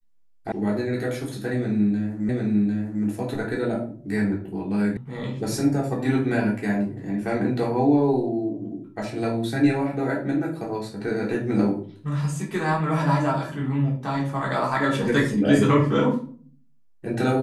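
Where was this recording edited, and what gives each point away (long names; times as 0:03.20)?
0:00.52: cut off before it has died away
0:02.29: the same again, the last 0.75 s
0:04.97: cut off before it has died away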